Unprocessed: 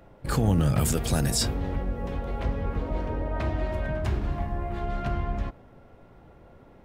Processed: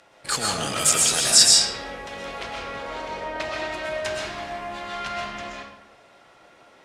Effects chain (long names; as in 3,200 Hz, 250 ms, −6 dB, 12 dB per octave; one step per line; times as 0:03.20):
meter weighting curve ITU-R 468
convolution reverb RT60 0.80 s, pre-delay 85 ms, DRR −1.5 dB
level +1.5 dB